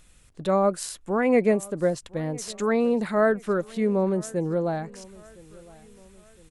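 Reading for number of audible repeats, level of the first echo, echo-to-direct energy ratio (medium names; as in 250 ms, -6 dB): 2, -23.0 dB, -22.0 dB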